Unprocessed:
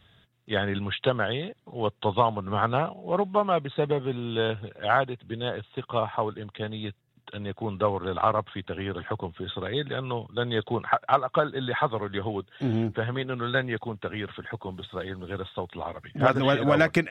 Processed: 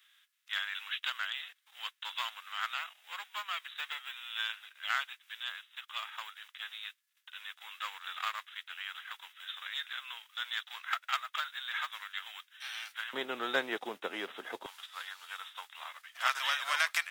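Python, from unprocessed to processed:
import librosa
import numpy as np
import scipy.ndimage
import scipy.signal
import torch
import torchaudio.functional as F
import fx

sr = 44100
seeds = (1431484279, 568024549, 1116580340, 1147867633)

y = fx.envelope_flatten(x, sr, power=0.6)
y = fx.highpass(y, sr, hz=fx.steps((0.0, 1400.0), (13.13, 290.0), (14.66, 1100.0)), slope=24)
y = y * librosa.db_to_amplitude(-4.5)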